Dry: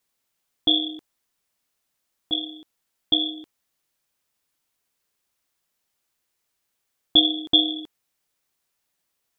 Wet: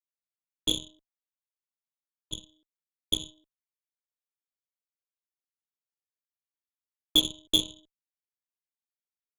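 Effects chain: Chebyshev shaper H 3 -39 dB, 7 -18 dB, 8 -24 dB, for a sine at -3 dBFS; Butterworth band-stop 720 Hz, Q 5.2; trim -5.5 dB

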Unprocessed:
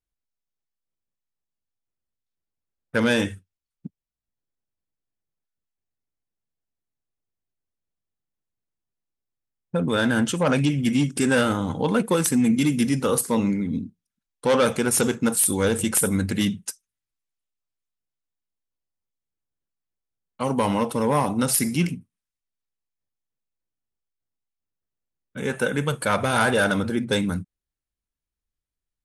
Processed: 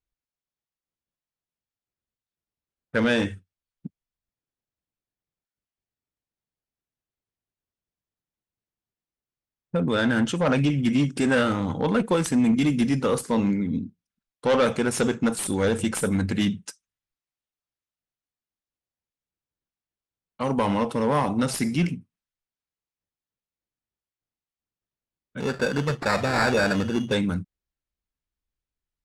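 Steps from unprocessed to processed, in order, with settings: 25.40–27.13 s: sample-rate reducer 3.1 kHz, jitter 0%; one-sided clip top -16.5 dBFS; distance through air 71 m

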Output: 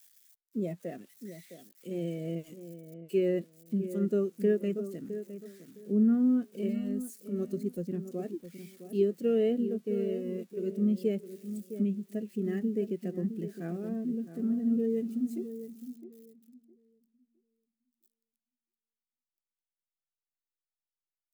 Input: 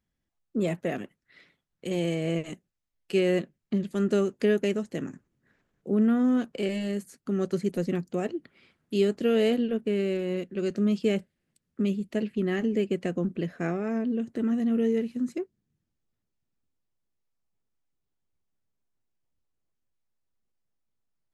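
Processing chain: zero-crossing glitches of -26.5 dBFS; on a send: filtered feedback delay 661 ms, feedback 36%, low-pass 1.7 kHz, level -7.5 dB; on the sum: spectral contrast expander 1.5:1; trim -3.5 dB

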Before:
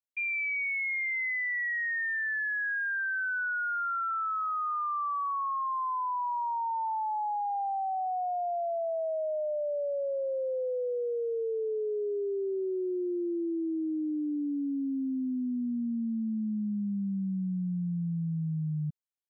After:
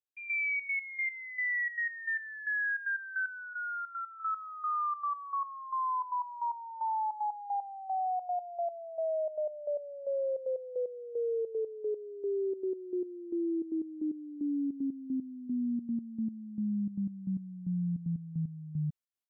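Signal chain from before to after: 3.53–4.20 s: peaking EQ 590 Hz -13.5 dB 2 oct; trance gate "...xxx.x..x" 152 bpm -12 dB

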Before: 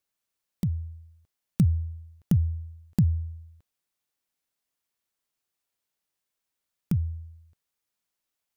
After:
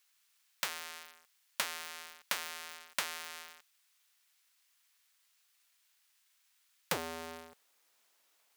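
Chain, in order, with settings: square wave that keeps the level; high-pass 1.5 kHz 12 dB/octave, from 6.92 s 410 Hz; compression 6:1, threshold -42 dBFS, peak gain reduction 18 dB; trim +10 dB

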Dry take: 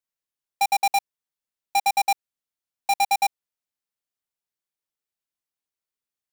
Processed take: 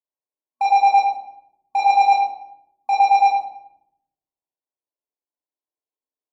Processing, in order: FFT band-pass 240–1100 Hz; waveshaping leveller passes 2; 1.77–2.92 s: doubling 21 ms -6 dB; reverberation RT60 0.75 s, pre-delay 11 ms, DRR -5.5 dB; trim -3.5 dB; MP3 64 kbps 44.1 kHz

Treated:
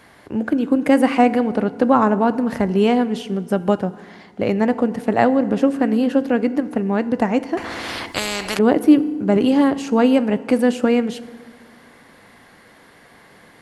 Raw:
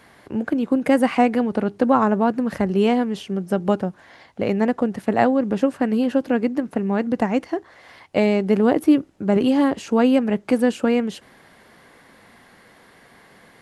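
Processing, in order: FDN reverb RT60 1.6 s, low-frequency decay 1.3×, high-frequency decay 0.65×, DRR 14 dB; 7.57–8.59 s: spectrum-flattening compressor 4:1; trim +2 dB

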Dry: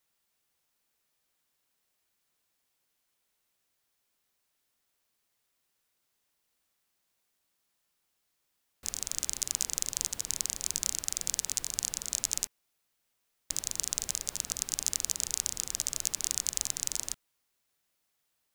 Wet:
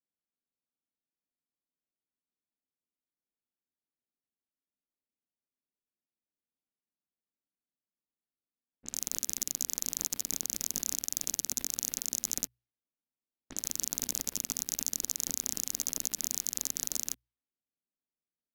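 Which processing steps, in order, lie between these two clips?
waveshaping leveller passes 5; treble shelf 5.9 kHz +9.5 dB; hum notches 60/120 Hz; level-controlled noise filter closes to 910 Hz, open at -22.5 dBFS; ten-band graphic EQ 250 Hz +11 dB, 1 kHz -4 dB, 8 kHz -10 dB; trim -7.5 dB

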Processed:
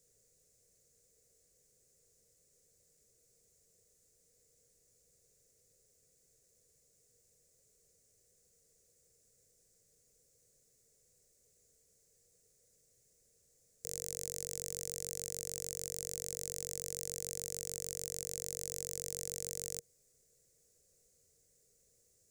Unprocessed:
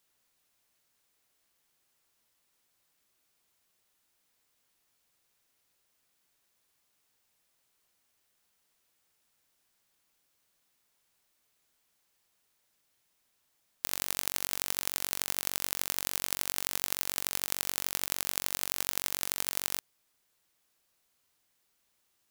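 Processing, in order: FFT filter 140 Hz 0 dB, 310 Hz -13 dB, 470 Hz +5 dB, 920 Hz -29 dB, 2 kHz -18 dB, 3.1 kHz -25 dB, 7.1 kHz -1 dB, 13 kHz -15 dB; peak limiter -29 dBFS, peak gain reduction 15 dB; trim +12.5 dB

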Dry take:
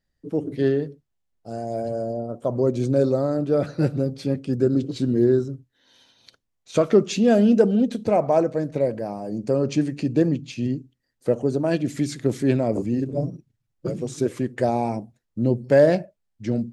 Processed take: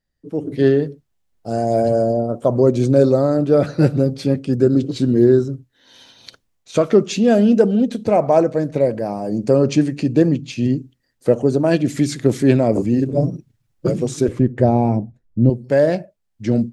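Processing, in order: 14.28–15.50 s: tilt EQ -3.5 dB/octave; level rider gain up to 13 dB; trim -1.5 dB

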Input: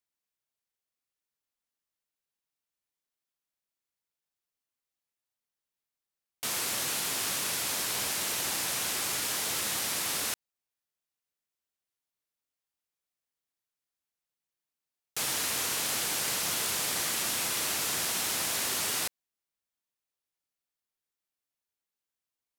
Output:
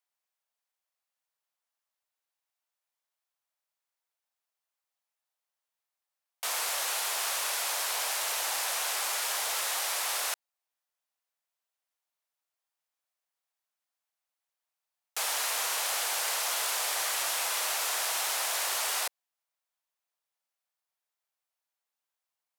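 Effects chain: high-pass 650 Hz 24 dB/octave; tilt shelf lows +5.5 dB, about 910 Hz; transformer saturation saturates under 2.8 kHz; trim +5.5 dB

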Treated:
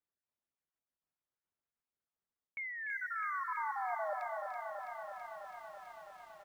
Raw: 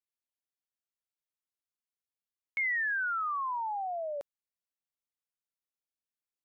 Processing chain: random holes in the spectrogram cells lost 29%; level-controlled noise filter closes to 1.8 kHz, open at -32 dBFS; reverse; compression 8:1, threshold -42 dBFS, peak gain reduction 12.5 dB; reverse; feedback delay 294 ms, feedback 34%, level -8.5 dB; on a send at -17 dB: reverberation RT60 1.1 s, pre-delay 76 ms; on the sum: dynamic bell 1.9 kHz, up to -5 dB, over -60 dBFS, Q 5.7; bit-crushed delay 329 ms, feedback 80%, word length 12-bit, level -5 dB; trim +4 dB

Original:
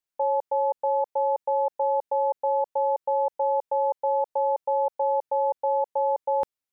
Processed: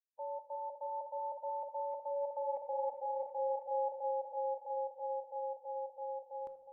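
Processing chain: expander on every frequency bin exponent 3; Doppler pass-by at 2.49 s, 10 m/s, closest 2 m; dynamic bell 200 Hz, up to +3 dB, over -50 dBFS, Q 1; reverse; compression 5:1, threshold -39 dBFS, peak gain reduction 15.5 dB; reverse; peak limiter -36 dBFS, peak gain reduction 6.5 dB; echo whose repeats swap between lows and highs 364 ms, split 860 Hz, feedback 63%, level -4.5 dB; on a send at -11 dB: reverberation RT60 0.60 s, pre-delay 3 ms; on the sum: trim +5.5 dB

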